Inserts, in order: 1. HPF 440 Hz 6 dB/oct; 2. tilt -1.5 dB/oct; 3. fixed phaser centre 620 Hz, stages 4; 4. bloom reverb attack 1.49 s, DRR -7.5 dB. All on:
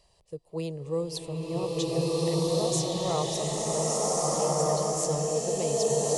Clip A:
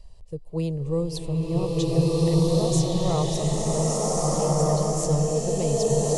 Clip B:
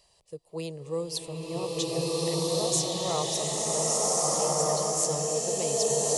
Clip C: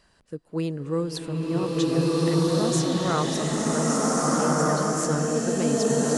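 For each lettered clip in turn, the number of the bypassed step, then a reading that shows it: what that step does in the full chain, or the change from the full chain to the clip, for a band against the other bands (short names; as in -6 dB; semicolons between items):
1, 125 Hz band +9.0 dB; 2, 8 kHz band +5.0 dB; 3, 2 kHz band +9.5 dB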